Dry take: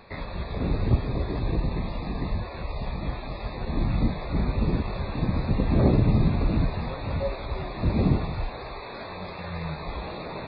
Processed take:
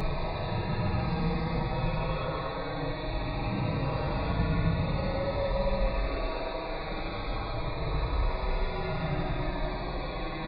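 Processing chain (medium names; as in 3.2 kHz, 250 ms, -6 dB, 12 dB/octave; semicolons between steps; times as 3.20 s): Paulstretch 9.9×, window 0.10 s, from 6.70 s; comb 6.3 ms, depth 56%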